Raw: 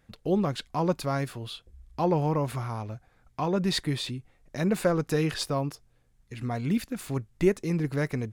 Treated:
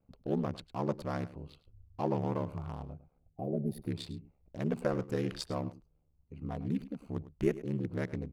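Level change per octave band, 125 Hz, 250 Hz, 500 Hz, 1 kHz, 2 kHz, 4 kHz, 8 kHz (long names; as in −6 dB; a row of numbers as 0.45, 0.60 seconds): −7.5, −7.0, −7.5, −9.0, −10.5, −13.5, −14.5 decibels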